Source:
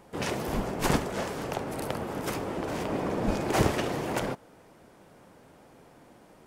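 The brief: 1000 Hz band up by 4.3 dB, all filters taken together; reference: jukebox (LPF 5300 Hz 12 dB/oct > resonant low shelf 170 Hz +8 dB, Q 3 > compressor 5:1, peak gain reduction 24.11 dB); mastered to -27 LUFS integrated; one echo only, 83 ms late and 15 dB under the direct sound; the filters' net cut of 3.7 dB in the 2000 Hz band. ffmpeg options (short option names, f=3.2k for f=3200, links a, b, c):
-af "lowpass=5.3k,lowshelf=f=170:t=q:w=3:g=8,equalizer=f=1k:t=o:g=7.5,equalizer=f=2k:t=o:g=-7.5,aecho=1:1:83:0.178,acompressor=threshold=-38dB:ratio=5,volume=15dB"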